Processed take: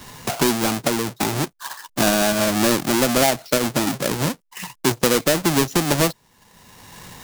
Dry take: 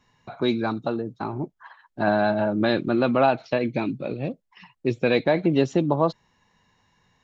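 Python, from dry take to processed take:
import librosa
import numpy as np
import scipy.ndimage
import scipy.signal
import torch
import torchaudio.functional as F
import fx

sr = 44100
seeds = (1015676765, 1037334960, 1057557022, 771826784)

y = fx.halfwave_hold(x, sr)
y = fx.bass_treble(y, sr, bass_db=-2, treble_db=7)
y = fx.band_squash(y, sr, depth_pct=70)
y = F.gain(torch.from_numpy(y), -1.5).numpy()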